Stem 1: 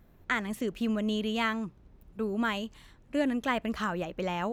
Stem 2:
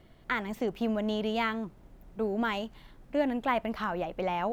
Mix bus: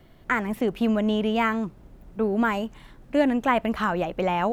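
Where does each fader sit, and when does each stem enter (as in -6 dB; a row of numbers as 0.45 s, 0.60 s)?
-0.5 dB, +3.0 dB; 0.00 s, 0.00 s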